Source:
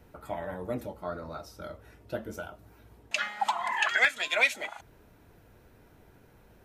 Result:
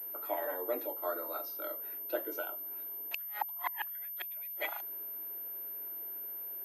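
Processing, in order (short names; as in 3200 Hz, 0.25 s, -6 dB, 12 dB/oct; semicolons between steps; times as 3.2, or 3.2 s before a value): flipped gate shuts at -20 dBFS, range -37 dB; steep high-pass 290 Hz 72 dB/oct; pulse-width modulation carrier 13000 Hz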